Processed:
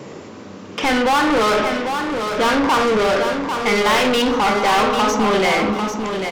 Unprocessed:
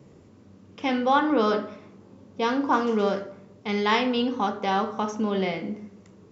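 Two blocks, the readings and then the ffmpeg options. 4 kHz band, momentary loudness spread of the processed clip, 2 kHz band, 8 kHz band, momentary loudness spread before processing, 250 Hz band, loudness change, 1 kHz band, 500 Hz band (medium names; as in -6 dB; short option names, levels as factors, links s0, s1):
+11.5 dB, 7 LU, +12.0 dB, no reading, 14 LU, +6.0 dB, +8.0 dB, +8.5 dB, +8.5 dB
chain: -filter_complex "[0:a]asplit=2[s0][s1];[s1]highpass=f=720:p=1,volume=39.8,asoftclip=type=tanh:threshold=0.355[s2];[s0][s2]amix=inputs=2:normalize=0,lowpass=f=5100:p=1,volume=0.501,aecho=1:1:796|1592|2388:0.473|0.123|0.032,volume=0.891"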